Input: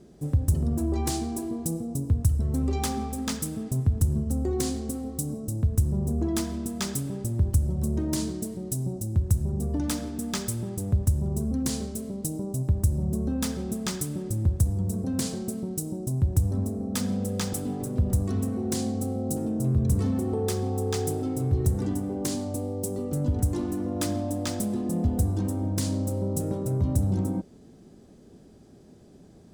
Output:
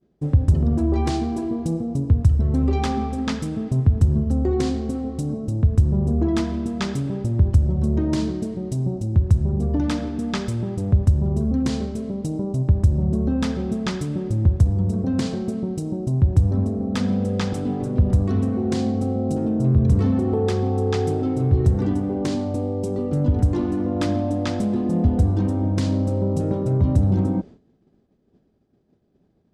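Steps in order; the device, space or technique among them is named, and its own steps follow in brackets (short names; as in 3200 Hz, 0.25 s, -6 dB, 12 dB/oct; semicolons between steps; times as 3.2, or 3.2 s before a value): hearing-loss simulation (LPF 3500 Hz 12 dB/oct; expander -39 dBFS); gain +6.5 dB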